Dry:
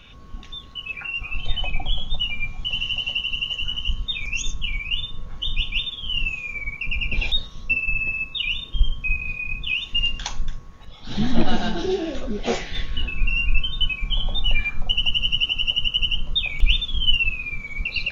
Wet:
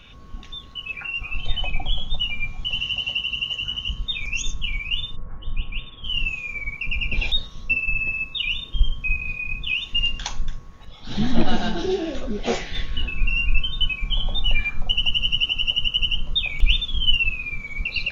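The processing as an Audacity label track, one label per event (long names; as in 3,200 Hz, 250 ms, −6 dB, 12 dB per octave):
2.790000	3.990000	high-pass filter 44 Hz
5.150000	6.030000	low-pass filter 1,600 Hz → 2,500 Hz 24 dB per octave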